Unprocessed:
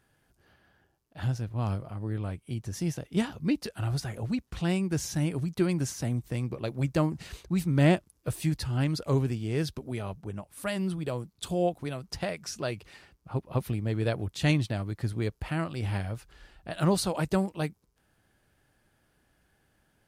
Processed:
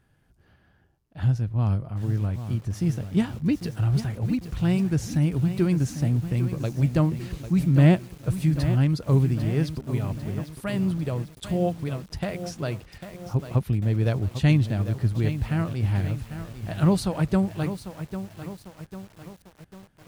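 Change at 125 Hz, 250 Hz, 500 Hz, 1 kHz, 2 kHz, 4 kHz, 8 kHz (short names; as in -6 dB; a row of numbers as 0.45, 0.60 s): +7.5, +5.5, +1.5, +0.5, +0.5, -1.0, -2.5 dB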